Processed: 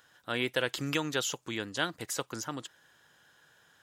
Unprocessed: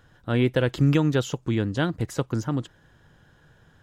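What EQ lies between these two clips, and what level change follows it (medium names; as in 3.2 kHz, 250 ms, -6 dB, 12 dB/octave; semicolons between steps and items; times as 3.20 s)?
high-pass 1.2 kHz 6 dB/octave; treble shelf 5.2 kHz +7.5 dB; 0.0 dB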